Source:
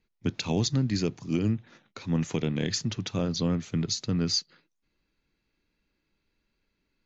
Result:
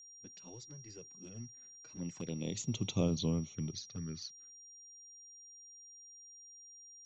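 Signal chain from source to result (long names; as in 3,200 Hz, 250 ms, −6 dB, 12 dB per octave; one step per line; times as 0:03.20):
source passing by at 0:02.97, 21 m/s, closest 5.3 metres
flanger swept by the level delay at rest 8.8 ms, full sweep at −33.5 dBFS
steady tone 5,700 Hz −51 dBFS
level −2 dB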